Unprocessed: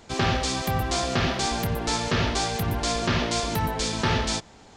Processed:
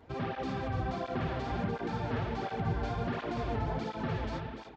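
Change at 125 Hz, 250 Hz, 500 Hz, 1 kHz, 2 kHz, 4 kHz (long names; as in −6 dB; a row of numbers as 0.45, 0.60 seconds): −7.0, −7.0, −7.0, −9.0, −12.5, −20.5 decibels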